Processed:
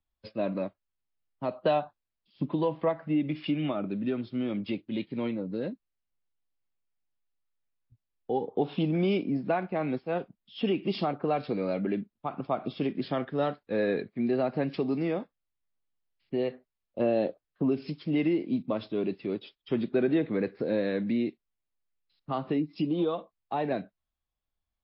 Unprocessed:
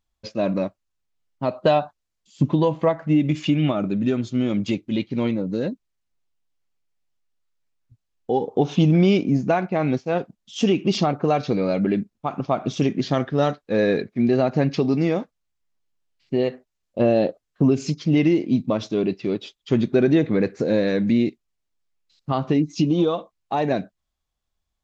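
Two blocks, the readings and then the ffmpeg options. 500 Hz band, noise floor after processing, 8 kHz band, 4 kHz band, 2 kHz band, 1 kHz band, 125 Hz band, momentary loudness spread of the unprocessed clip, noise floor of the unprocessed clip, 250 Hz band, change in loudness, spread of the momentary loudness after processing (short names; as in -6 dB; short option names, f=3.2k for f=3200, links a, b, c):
-7.5 dB, under -85 dBFS, n/a, -9.5 dB, -7.5 dB, -7.5 dB, -12.5 dB, 9 LU, -79 dBFS, -9.0 dB, -8.5 dB, 8 LU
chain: -filter_complex "[0:a]lowpass=3.9k,acrossover=split=180|430|1800[a][b][c][d];[a]acompressor=threshold=-38dB:ratio=4[e];[e][b][c][d]amix=inputs=4:normalize=0,volume=-7dB" -ar 12000 -c:a libmp3lame -b:a 32k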